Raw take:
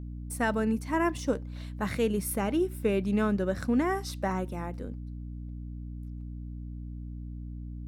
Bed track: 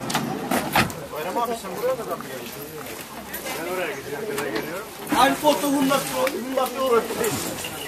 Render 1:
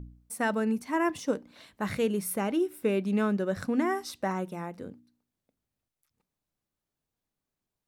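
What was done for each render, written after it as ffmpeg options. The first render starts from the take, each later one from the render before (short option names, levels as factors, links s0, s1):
-af "bandreject=f=60:t=h:w=4,bandreject=f=120:t=h:w=4,bandreject=f=180:t=h:w=4,bandreject=f=240:t=h:w=4,bandreject=f=300:t=h:w=4"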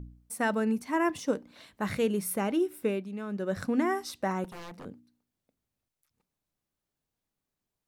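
-filter_complex "[0:a]asettb=1/sr,asplit=3[s0][s1][s2];[s0]atrim=end=4.444[s3];[s1]atrim=start=4.44:end=4.85,asetpts=PTS-STARTPTS,afade=t=in:d=0.004:c=qsin,afade=t=out:st=0.406:d=0.004:c=qsin,aeval=exprs='0.0126*(abs(mod(val(0)/0.0126+3,4)-2)-1)':c=same[s4];[s2]atrim=start=4.846[s5];[s3][s4]acrossfade=d=0.004:c1=hsin:c2=qsin[s6];[s6][s5]acrossfade=d=0.004:c1=qsin:c2=hsin,asplit=3[s7][s8][s9];[s7]atrim=end=3.09,asetpts=PTS-STARTPTS,afade=t=out:st=2.8:d=0.29:silence=0.281838[s10];[s8]atrim=start=3.09:end=3.26,asetpts=PTS-STARTPTS,volume=0.282[s11];[s9]atrim=start=3.26,asetpts=PTS-STARTPTS,afade=t=in:d=0.29:silence=0.281838[s12];[s10][s11][s12]concat=n=3:v=0:a=1"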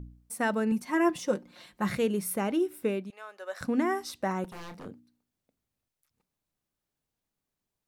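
-filter_complex "[0:a]asettb=1/sr,asplit=3[s0][s1][s2];[s0]atrim=end=0.714[s3];[s1]atrim=start=0.71:end=1.96,asetpts=PTS-STARTPTS,afade=t=in:d=0.004:c=qsin,afade=t=out:st=1.246:d=0.004:c=qsin,aecho=1:1:5.6:0.65,atrim=end_sample=55125[s4];[s2]atrim=start=1.956[s5];[s3][s4]acrossfade=d=0.004:c1=hsin:c2=qsin[s6];[s6][s5]acrossfade=d=0.004:c1=qsin:c2=hsin,asettb=1/sr,asplit=3[s7][s8][s9];[s7]atrim=end=3.104[s10];[s8]atrim=start=3.1:end=3.61,asetpts=PTS-STARTPTS,afade=t=in:d=0.004:c=qsin,afade=t=out:st=0.506:d=0.004:c=qsin,highpass=f=620:w=0.5412,highpass=f=620:w=1.3066[s11];[s9]atrim=start=3.606[s12];[s10][s11]acrossfade=d=0.004:c1=hsin:c2=qsin[s13];[s13][s12]acrossfade=d=0.004:c1=qsin:c2=hsin,asettb=1/sr,asplit=3[s14][s15][s16];[s14]atrim=end=4.504[s17];[s15]atrim=start=4.5:end=4.91,asetpts=PTS-STARTPTS,afade=t=in:d=0.004:c=qsin,afade=t=out:st=0.406:d=0.004:c=qsin,asplit=2[s18][s19];[s19]adelay=30,volume=0.376[s20];[s18][s20]amix=inputs=2:normalize=0,atrim=end_sample=18081[s21];[s16]atrim=start=4.906[s22];[s17][s21]acrossfade=d=0.004:c1=hsin:c2=qsin[s23];[s23][s22]acrossfade=d=0.004:c1=qsin:c2=hsin"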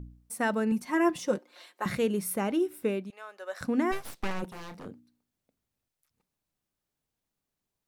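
-filter_complex "[0:a]asettb=1/sr,asplit=3[s0][s1][s2];[s0]atrim=end=1.384[s3];[s1]atrim=start=1.38:end=1.86,asetpts=PTS-STARTPTS,afade=t=in:d=0.004:c=qsin,afade=t=out:st=0.476:d=0.004:c=qsin,highpass=f=370:w=0.5412,highpass=f=370:w=1.3066[s4];[s2]atrim=start=1.856[s5];[s3][s4]acrossfade=d=0.004:c1=hsin:c2=qsin[s6];[s6][s5]acrossfade=d=0.004:c1=qsin:c2=hsin,asplit=3[s7][s8][s9];[s7]afade=t=out:st=3.91:d=0.02[s10];[s8]aeval=exprs='abs(val(0))':c=same,afade=t=in:st=3.91:d=0.02,afade=t=out:st=4.41:d=0.02[s11];[s9]afade=t=in:st=4.41:d=0.02[s12];[s10][s11][s12]amix=inputs=3:normalize=0"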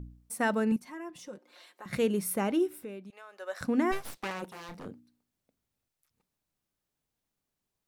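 -filter_complex "[0:a]asettb=1/sr,asplit=3[s0][s1][s2];[s0]atrim=end=0.764[s3];[s1]atrim=start=0.76:end=1.93,asetpts=PTS-STARTPTS,afade=t=in:d=0.004:c=qsin,afade=t=out:st=1.166:d=0.004:c=qsin,acompressor=threshold=0.00224:ratio=2:attack=3.2:release=140:knee=1:detection=peak[s4];[s2]atrim=start=1.926[s5];[s3][s4]acrossfade=d=0.004:c1=hsin:c2=qsin[s6];[s6][s5]acrossfade=d=0.004:c1=qsin:c2=hsin,asettb=1/sr,asplit=3[s7][s8][s9];[s7]atrim=end=2.804[s10];[s8]atrim=start=2.8:end=3.33,asetpts=PTS-STARTPTS,afade=t=in:d=0.004:c=qsin,afade=t=out:st=0.526:d=0.004:c=qsin,acompressor=threshold=0.00398:ratio=2:attack=3.2:release=140:knee=1:detection=peak[s11];[s9]atrim=start=3.326[s12];[s10][s11]acrossfade=d=0.004:c1=hsin:c2=qsin[s13];[s13][s12]acrossfade=d=0.004:c1=qsin:c2=hsin,asettb=1/sr,asplit=3[s14][s15][s16];[s14]atrim=end=4.174[s17];[s15]atrim=start=4.17:end=4.69,asetpts=PTS-STARTPTS,afade=t=in:d=0.004:c=qsin,afade=t=out:st=0.516:d=0.004:c=qsin,highpass=f=340:p=1[s18];[s16]atrim=start=4.686[s19];[s17][s18]acrossfade=d=0.004:c1=hsin:c2=qsin[s20];[s20][s19]acrossfade=d=0.004:c1=qsin:c2=hsin"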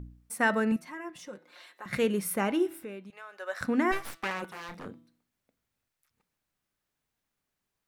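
-af "equalizer=f=1700:t=o:w=1.6:g=6,bandreject=f=164.9:t=h:w=4,bandreject=f=329.8:t=h:w=4,bandreject=f=494.7:t=h:w=4,bandreject=f=659.6:t=h:w=4,bandreject=f=824.5:t=h:w=4,bandreject=f=989.4:t=h:w=4,bandreject=f=1154.3:t=h:w=4,bandreject=f=1319.2:t=h:w=4,bandreject=f=1484.1:t=h:w=4,bandreject=f=1649:t=h:w=4,bandreject=f=1813.9:t=h:w=4,bandreject=f=1978.8:t=h:w=4,bandreject=f=2143.7:t=h:w=4,bandreject=f=2308.6:t=h:w=4,bandreject=f=2473.5:t=h:w=4,bandreject=f=2638.4:t=h:w=4,bandreject=f=2803.3:t=h:w=4,bandreject=f=2968.2:t=h:w=4,bandreject=f=3133.1:t=h:w=4,bandreject=f=3298:t=h:w=4,bandreject=f=3462.9:t=h:w=4,bandreject=f=3627.8:t=h:w=4,bandreject=f=3792.7:t=h:w=4,bandreject=f=3957.6:t=h:w=4,bandreject=f=4122.5:t=h:w=4"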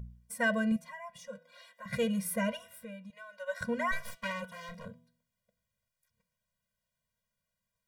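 -af "afftfilt=real='re*eq(mod(floor(b*sr/1024/230),2),0)':imag='im*eq(mod(floor(b*sr/1024/230),2),0)':win_size=1024:overlap=0.75"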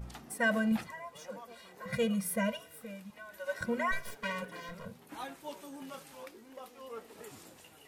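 -filter_complex "[1:a]volume=0.0531[s0];[0:a][s0]amix=inputs=2:normalize=0"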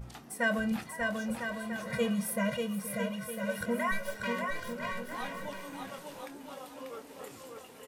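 -filter_complex "[0:a]asplit=2[s0][s1];[s1]adelay=25,volume=0.282[s2];[s0][s2]amix=inputs=2:normalize=0,aecho=1:1:590|1003|1292|1494|1636:0.631|0.398|0.251|0.158|0.1"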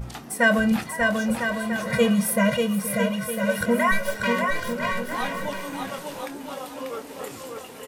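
-af "volume=3.35"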